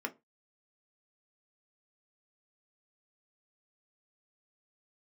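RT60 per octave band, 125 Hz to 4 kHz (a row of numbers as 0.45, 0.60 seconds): 0.30, 0.25, 0.25, 0.20, 0.20, 0.15 seconds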